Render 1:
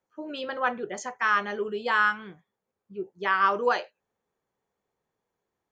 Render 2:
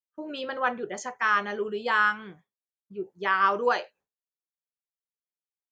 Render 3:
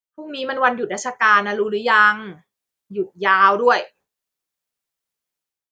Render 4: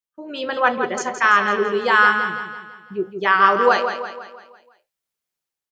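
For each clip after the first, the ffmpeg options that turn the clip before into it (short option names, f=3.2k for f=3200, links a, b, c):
-af "agate=range=-33dB:threshold=-53dB:ratio=3:detection=peak"
-af "dynaudnorm=f=140:g=5:m=12dB"
-af "aecho=1:1:167|334|501|668|835|1002:0.398|0.191|0.0917|0.044|0.0211|0.0101,volume=-1dB"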